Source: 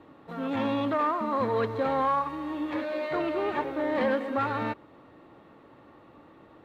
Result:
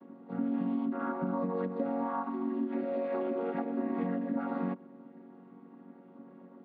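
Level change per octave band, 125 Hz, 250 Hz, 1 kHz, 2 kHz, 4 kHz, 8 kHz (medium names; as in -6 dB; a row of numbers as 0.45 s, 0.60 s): -3.0 dB, -0.5 dB, -10.0 dB, -12.5 dB, under -20 dB, no reading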